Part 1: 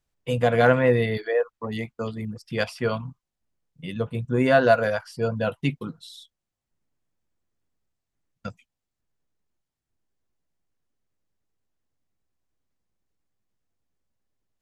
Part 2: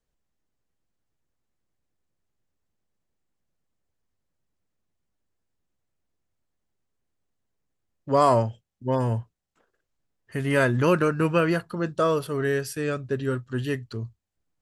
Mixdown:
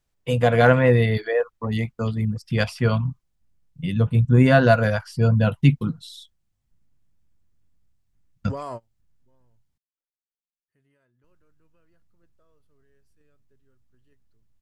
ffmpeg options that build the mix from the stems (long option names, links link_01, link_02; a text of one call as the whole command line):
ffmpeg -i stem1.wav -i stem2.wav -filter_complex "[0:a]asubboost=boost=4.5:cutoff=200,volume=2.5dB,asplit=3[link_01][link_02][link_03];[link_01]atrim=end=9.78,asetpts=PTS-STARTPTS,afade=type=out:start_time=9.776:duration=0.004:curve=hsin[link_04];[link_02]atrim=start=9.78:end=11.24,asetpts=PTS-STARTPTS,volume=0[link_05];[link_03]atrim=start=11.24,asetpts=PTS-STARTPTS,afade=type=in:duration=0.004:curve=hsin[link_06];[link_04][link_05][link_06]concat=n=3:v=0:a=1,asplit=2[link_07][link_08];[1:a]alimiter=limit=-18dB:level=0:latency=1:release=412,adelay=400,volume=-5.5dB[link_09];[link_08]apad=whole_len=662281[link_10];[link_09][link_10]sidechaingate=range=-35dB:threshold=-56dB:ratio=16:detection=peak[link_11];[link_07][link_11]amix=inputs=2:normalize=0" out.wav